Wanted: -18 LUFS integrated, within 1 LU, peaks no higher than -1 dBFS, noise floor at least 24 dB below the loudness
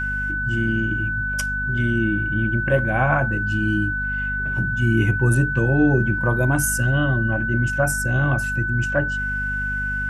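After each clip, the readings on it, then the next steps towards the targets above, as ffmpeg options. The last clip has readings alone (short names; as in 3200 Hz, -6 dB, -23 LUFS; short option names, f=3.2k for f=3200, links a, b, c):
hum 50 Hz; harmonics up to 250 Hz; hum level -27 dBFS; steady tone 1500 Hz; tone level -23 dBFS; loudness -21.0 LUFS; peak -6.5 dBFS; loudness target -18.0 LUFS
-> -af "bandreject=f=50:t=h:w=6,bandreject=f=100:t=h:w=6,bandreject=f=150:t=h:w=6,bandreject=f=200:t=h:w=6,bandreject=f=250:t=h:w=6"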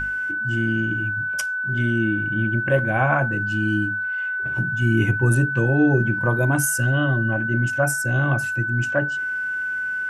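hum none; steady tone 1500 Hz; tone level -23 dBFS
-> -af "bandreject=f=1.5k:w=30"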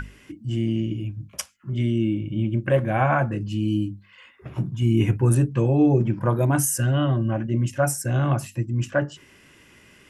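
steady tone none; loudness -23.0 LUFS; peak -8.0 dBFS; loudness target -18.0 LUFS
-> -af "volume=5dB"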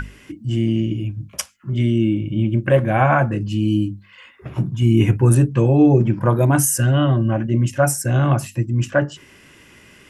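loudness -18.0 LUFS; peak -3.0 dBFS; noise floor -48 dBFS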